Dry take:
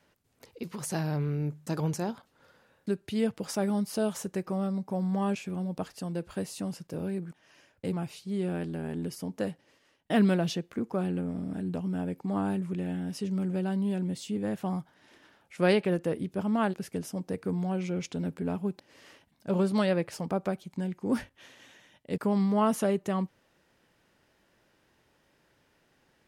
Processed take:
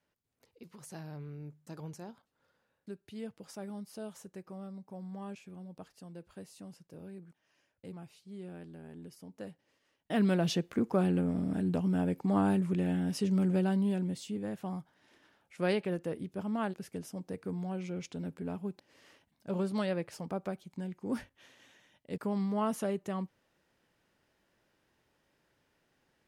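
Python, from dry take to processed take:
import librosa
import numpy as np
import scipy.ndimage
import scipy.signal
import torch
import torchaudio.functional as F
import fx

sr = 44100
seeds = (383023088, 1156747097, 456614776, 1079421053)

y = fx.gain(x, sr, db=fx.line((9.26, -14.0), (10.18, -5.5), (10.6, 2.0), (13.55, 2.0), (14.52, -6.5)))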